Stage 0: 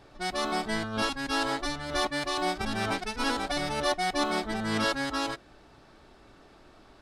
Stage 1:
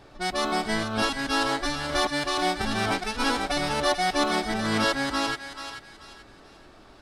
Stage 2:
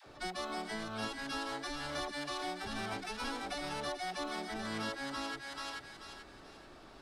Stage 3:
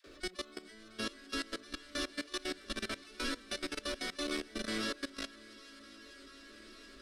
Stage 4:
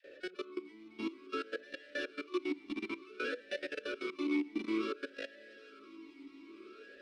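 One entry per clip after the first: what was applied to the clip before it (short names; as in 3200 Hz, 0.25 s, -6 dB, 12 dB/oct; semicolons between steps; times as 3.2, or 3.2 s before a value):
thinning echo 0.435 s, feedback 35%, high-pass 940 Hz, level -8 dB; gain +3.5 dB
low shelf 150 Hz -3 dB; compressor 4:1, threshold -35 dBFS, peak gain reduction 13.5 dB; dispersion lows, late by 66 ms, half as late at 440 Hz; gain -3 dB
on a send: swung echo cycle 1.16 s, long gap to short 1.5:1, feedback 32%, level -6 dB; on the sum: level quantiser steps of 19 dB; fixed phaser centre 340 Hz, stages 4; gain +5.5 dB
vowel sweep e-u 0.56 Hz; gain +12 dB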